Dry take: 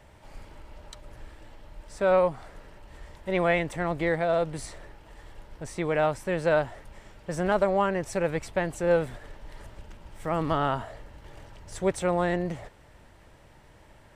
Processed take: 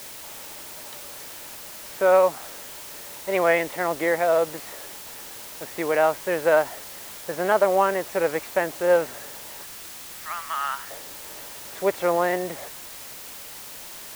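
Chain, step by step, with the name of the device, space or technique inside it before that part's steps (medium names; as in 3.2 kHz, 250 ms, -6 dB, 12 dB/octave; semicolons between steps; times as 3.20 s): 9.63–10.91 s: high-pass 1.2 kHz 24 dB/octave; wax cylinder (band-pass 370–2600 Hz; wow and flutter; white noise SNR 14 dB); trim +5.5 dB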